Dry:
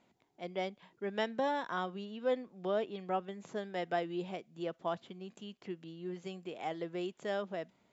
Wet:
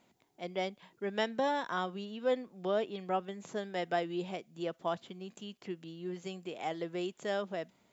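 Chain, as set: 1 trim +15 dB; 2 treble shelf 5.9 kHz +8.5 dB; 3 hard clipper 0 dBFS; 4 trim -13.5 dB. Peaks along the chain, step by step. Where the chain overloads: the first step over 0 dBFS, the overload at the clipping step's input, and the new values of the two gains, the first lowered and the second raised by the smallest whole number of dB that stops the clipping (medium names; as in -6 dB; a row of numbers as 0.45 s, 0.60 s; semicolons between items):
-4.5 dBFS, -3.5 dBFS, -3.5 dBFS, -17.0 dBFS; nothing clips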